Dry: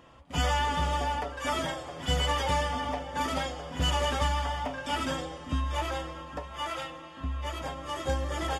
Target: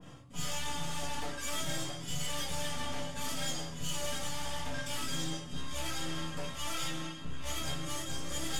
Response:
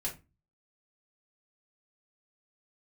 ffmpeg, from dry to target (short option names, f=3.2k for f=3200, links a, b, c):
-filter_complex "[0:a]highpass=150,bass=f=250:g=14,treble=f=4k:g=11,areverse,acompressor=threshold=-37dB:ratio=8,areverse,aeval=exprs='(tanh(112*val(0)+0.6)-tanh(0.6))/112':c=same[a];[1:a]atrim=start_sample=2205,asetrate=33957,aresample=44100[b];[a][b]afir=irnorm=-1:irlink=0,adynamicequalizer=threshold=0.00112:dfrequency=1700:dqfactor=0.7:tfrequency=1700:tqfactor=0.7:attack=5:release=100:ratio=0.375:range=4:mode=boostabove:tftype=highshelf"